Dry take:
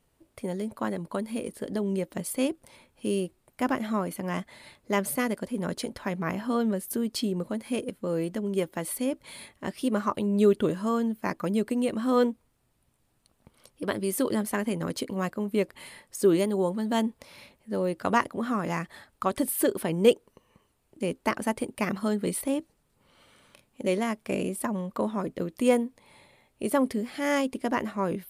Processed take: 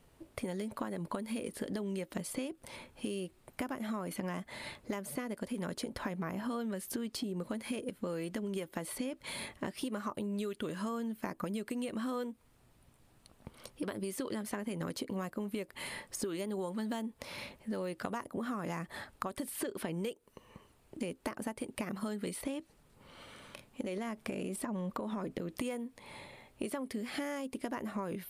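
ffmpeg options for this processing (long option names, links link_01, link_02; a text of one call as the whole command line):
ffmpeg -i in.wav -filter_complex "[0:a]asettb=1/sr,asplit=3[link_01][link_02][link_03];[link_01]atrim=end=23.824[link_04];[link_02]atrim=start=23.82:end=25.59,asetpts=PTS-STARTPTS,afade=type=in:duration=0.004:curve=qsin,afade=type=out:start_time=1.766:duration=0.004:curve=qsin,acompressor=threshold=-33dB:ratio=6:attack=3.2:release=140:knee=1:detection=peak[link_05];[link_03]atrim=start=25.586[link_06];[link_04][link_05]acrossfade=duration=0.004:curve1=hsin:curve2=qsin[link_07];[link_07][link_06]acrossfade=duration=0.004:curve1=qsin:curve2=hsin,acrossover=split=1200|7900[link_08][link_09][link_10];[link_08]acompressor=threshold=-37dB:ratio=4[link_11];[link_09]acompressor=threshold=-46dB:ratio=4[link_12];[link_10]acompressor=threshold=-49dB:ratio=4[link_13];[link_11][link_12][link_13]amix=inputs=3:normalize=0,highshelf=frequency=5800:gain=-5,acompressor=threshold=-41dB:ratio=5,volume=6.5dB" out.wav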